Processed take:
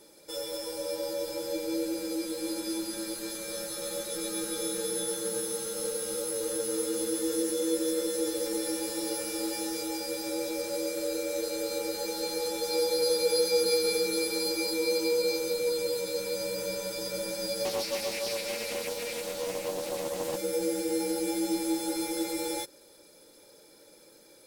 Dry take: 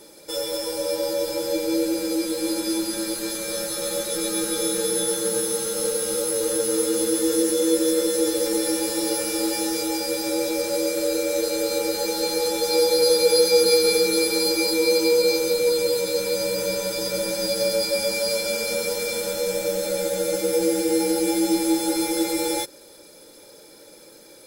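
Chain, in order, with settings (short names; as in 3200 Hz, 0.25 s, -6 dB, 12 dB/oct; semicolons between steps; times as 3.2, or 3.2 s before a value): 17.65–20.37 Doppler distortion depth 0.37 ms; gain -8.5 dB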